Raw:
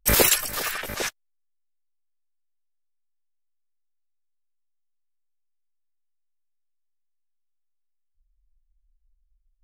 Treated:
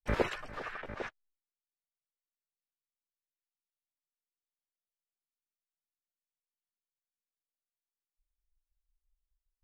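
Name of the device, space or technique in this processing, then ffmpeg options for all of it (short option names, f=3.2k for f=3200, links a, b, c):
hearing-loss simulation: -af "lowpass=1.7k,agate=range=-33dB:threshold=-58dB:ratio=3:detection=peak,volume=-8dB"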